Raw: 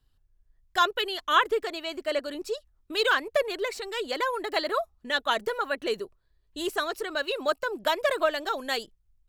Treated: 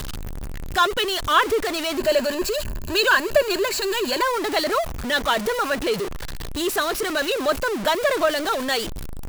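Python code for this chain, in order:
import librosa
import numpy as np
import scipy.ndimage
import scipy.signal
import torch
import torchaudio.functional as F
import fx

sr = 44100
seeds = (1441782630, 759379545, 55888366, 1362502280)

y = x + 0.5 * 10.0 ** (-26.0 / 20.0) * np.sign(x)
y = fx.ripple_eq(y, sr, per_octave=1.4, db=9, at=(1.98, 4.23))
y = y * librosa.db_to_amplitude(2.5)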